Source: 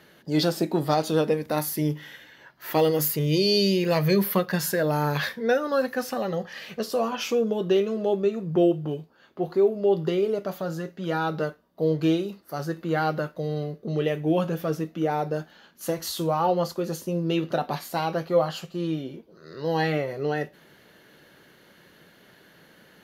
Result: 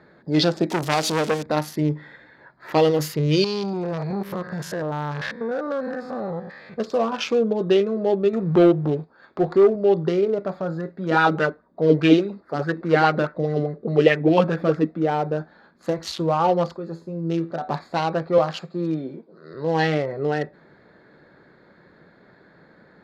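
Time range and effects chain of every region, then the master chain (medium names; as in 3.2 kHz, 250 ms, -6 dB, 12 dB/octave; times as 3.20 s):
0.70–1.43 s: zero-crossing glitches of -18.5 dBFS + transformer saturation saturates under 1.6 kHz
3.44–6.74 s: spectrogram pixelated in time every 100 ms + compression 2:1, threshold -27 dBFS + transformer saturation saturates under 580 Hz
8.33–9.76 s: waveshaping leveller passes 1 + tape noise reduction on one side only encoder only
11.11–14.91 s: dynamic bell 2.3 kHz, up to +5 dB, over -47 dBFS, Q 1.4 + sweeping bell 4.8 Hz 230–2000 Hz +10 dB
16.77–17.68 s: treble shelf 7.6 kHz +9.5 dB + feedback comb 83 Hz, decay 0.41 s, mix 70%
18.38–19.54 s: high-pass 140 Hz 24 dB/octave + treble shelf 4.2 kHz +5 dB
whole clip: local Wiener filter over 15 samples; low-pass 4.1 kHz 12 dB/octave; treble shelf 2.9 kHz +9.5 dB; trim +3.5 dB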